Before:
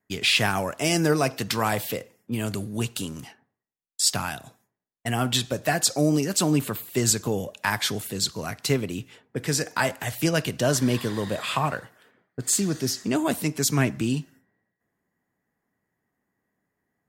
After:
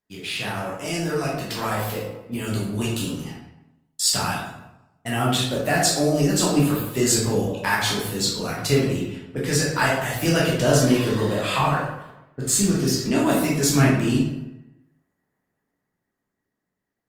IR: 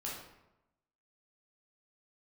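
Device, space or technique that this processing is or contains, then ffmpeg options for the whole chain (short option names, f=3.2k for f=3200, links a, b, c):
speakerphone in a meeting room: -filter_complex "[1:a]atrim=start_sample=2205[a];[0:a][a]afir=irnorm=-1:irlink=0,dynaudnorm=f=590:g=7:m=15.5dB,volume=-5dB" -ar 48000 -c:a libopus -b:a 32k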